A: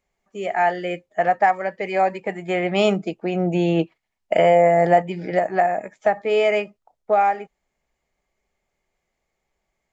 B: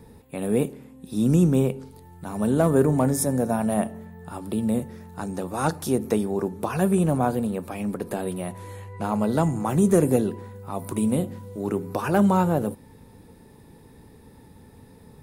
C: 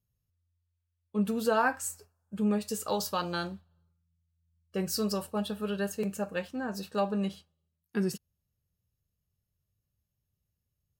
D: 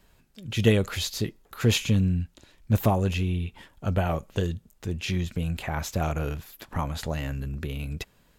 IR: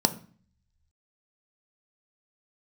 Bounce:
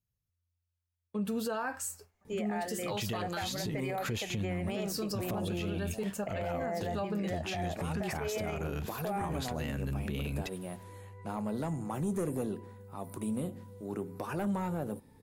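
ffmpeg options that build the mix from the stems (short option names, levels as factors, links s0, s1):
-filter_complex "[0:a]acompressor=threshold=0.0447:ratio=2.5,adelay=1950,volume=0.631[s0];[1:a]asoftclip=type=tanh:threshold=0.211,adelay=2250,volume=0.316[s1];[2:a]agate=range=0.501:threshold=0.00126:ratio=16:detection=peak,volume=1.06,asplit=2[s2][s3];[3:a]highpass=f=91:p=1,acompressor=threshold=0.0398:ratio=6,adelay=2450,volume=1.26[s4];[s3]apad=whole_len=770769[s5];[s1][s5]sidechaincompress=threshold=0.00794:ratio=8:attack=16:release=271[s6];[s0][s6][s2][s4]amix=inputs=4:normalize=0,alimiter=level_in=1.33:limit=0.0631:level=0:latency=1:release=84,volume=0.75"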